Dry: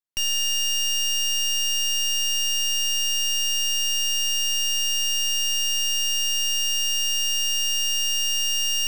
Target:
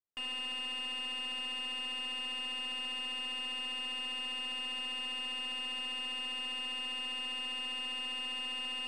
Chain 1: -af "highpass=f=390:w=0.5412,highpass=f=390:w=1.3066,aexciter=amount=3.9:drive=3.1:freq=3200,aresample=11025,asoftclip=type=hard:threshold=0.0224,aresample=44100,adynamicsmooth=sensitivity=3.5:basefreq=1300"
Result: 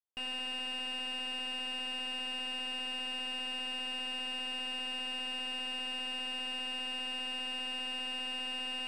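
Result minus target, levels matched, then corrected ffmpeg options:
500 Hz band +4.0 dB
-af "aexciter=amount=3.9:drive=3.1:freq=3200,aresample=11025,asoftclip=type=hard:threshold=0.0224,aresample=44100,adynamicsmooth=sensitivity=3.5:basefreq=1300"

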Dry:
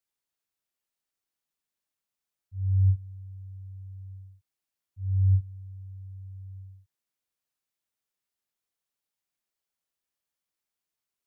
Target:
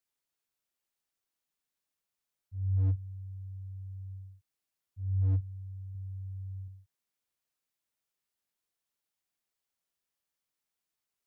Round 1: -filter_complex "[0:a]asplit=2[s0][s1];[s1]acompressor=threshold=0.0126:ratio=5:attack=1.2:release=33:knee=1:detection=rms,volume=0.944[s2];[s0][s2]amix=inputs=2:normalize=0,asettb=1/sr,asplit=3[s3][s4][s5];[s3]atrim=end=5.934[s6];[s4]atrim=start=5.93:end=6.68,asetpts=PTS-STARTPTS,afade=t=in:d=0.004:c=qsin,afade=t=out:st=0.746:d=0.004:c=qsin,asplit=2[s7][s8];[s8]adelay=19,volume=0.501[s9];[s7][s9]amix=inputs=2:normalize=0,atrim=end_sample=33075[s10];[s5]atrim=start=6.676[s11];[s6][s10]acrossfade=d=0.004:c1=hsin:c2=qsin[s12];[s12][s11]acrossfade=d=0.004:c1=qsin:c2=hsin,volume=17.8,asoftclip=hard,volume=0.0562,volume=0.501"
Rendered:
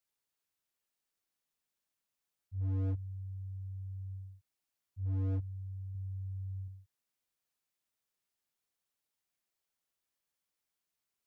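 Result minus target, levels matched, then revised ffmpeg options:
overload inside the chain: distortion +12 dB
-filter_complex "[0:a]asplit=2[s0][s1];[s1]acompressor=threshold=0.0126:ratio=5:attack=1.2:release=33:knee=1:detection=rms,volume=0.944[s2];[s0][s2]amix=inputs=2:normalize=0,asettb=1/sr,asplit=3[s3][s4][s5];[s3]atrim=end=5.934[s6];[s4]atrim=start=5.93:end=6.68,asetpts=PTS-STARTPTS,afade=t=in:d=0.004:c=qsin,afade=t=out:st=0.746:d=0.004:c=qsin,asplit=2[s7][s8];[s8]adelay=19,volume=0.501[s9];[s7][s9]amix=inputs=2:normalize=0,atrim=end_sample=33075[s10];[s5]atrim=start=6.676[s11];[s6][s10]acrossfade=d=0.004:c1=hsin:c2=qsin[s12];[s12][s11]acrossfade=d=0.004:c1=qsin:c2=hsin,volume=7.5,asoftclip=hard,volume=0.133,volume=0.501"

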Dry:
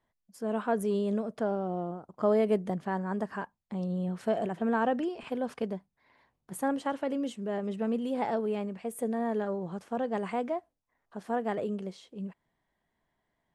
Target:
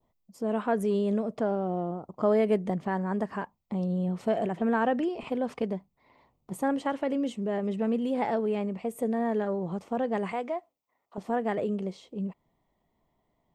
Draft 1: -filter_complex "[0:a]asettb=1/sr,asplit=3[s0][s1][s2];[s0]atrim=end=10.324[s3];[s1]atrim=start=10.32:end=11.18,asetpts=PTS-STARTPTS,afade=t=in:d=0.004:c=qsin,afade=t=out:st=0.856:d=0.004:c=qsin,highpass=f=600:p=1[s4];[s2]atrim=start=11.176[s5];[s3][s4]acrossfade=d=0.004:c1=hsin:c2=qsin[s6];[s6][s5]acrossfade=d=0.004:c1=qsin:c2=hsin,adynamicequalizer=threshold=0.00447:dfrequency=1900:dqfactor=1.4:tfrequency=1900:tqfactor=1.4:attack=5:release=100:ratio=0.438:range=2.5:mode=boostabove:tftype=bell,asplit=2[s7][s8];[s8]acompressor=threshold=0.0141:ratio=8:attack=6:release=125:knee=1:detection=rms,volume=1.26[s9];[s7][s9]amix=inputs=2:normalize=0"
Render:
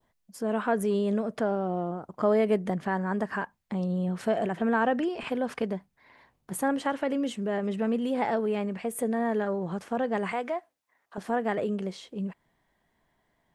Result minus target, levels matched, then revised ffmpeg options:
4 kHz band +3.5 dB
-filter_complex "[0:a]asettb=1/sr,asplit=3[s0][s1][s2];[s0]atrim=end=10.324[s3];[s1]atrim=start=10.32:end=11.18,asetpts=PTS-STARTPTS,afade=t=in:d=0.004:c=qsin,afade=t=out:st=0.856:d=0.004:c=qsin,highpass=f=600:p=1[s4];[s2]atrim=start=11.176[s5];[s3][s4]acrossfade=d=0.004:c1=hsin:c2=qsin[s6];[s6][s5]acrossfade=d=0.004:c1=qsin:c2=hsin,adynamicequalizer=threshold=0.00447:dfrequency=1900:dqfactor=1.4:tfrequency=1900:tqfactor=1.4:attack=5:release=100:ratio=0.438:range=2.5:mode=boostabove:tftype=bell,asplit=2[s7][s8];[s8]acompressor=threshold=0.0141:ratio=8:attack=6:release=125:knee=1:detection=rms,asuperstop=centerf=4400:order=8:qfactor=0.51,volume=1.26[s9];[s7][s9]amix=inputs=2:normalize=0"

